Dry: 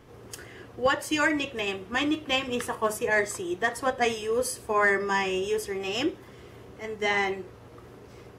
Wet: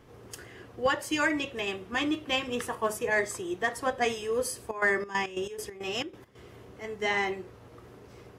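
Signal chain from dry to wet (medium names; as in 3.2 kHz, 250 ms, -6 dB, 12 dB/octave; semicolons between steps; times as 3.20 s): 4.64–6.40 s: trance gate "x.xx.x.x.x.xx." 137 bpm -12 dB; trim -2.5 dB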